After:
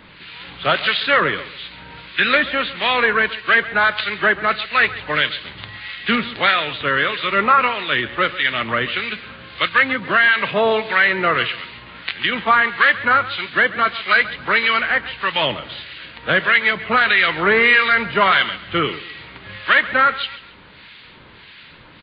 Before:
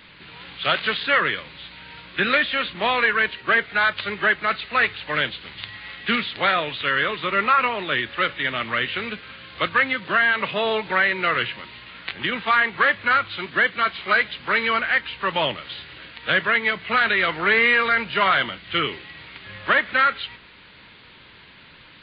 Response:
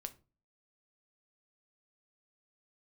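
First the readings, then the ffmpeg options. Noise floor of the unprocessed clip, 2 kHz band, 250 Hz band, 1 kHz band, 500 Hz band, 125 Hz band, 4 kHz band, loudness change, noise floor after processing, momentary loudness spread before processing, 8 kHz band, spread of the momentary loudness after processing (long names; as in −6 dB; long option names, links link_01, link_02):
−48 dBFS, +4.0 dB, +4.5 dB, +4.0 dB, +4.5 dB, +4.5 dB, +4.5 dB, +4.0 dB, −44 dBFS, 16 LU, can't be measured, 16 LU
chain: -filter_complex "[0:a]acrossover=split=1400[link_01][link_02];[link_01]aeval=exprs='val(0)*(1-0.7/2+0.7/2*cos(2*PI*1.6*n/s))':channel_layout=same[link_03];[link_02]aeval=exprs='val(0)*(1-0.7/2-0.7/2*cos(2*PI*1.6*n/s))':channel_layout=same[link_04];[link_03][link_04]amix=inputs=2:normalize=0,asplit=2[link_05][link_06];[link_06]aecho=0:1:136|272|408:0.15|0.0464|0.0144[link_07];[link_05][link_07]amix=inputs=2:normalize=0,volume=7.5dB"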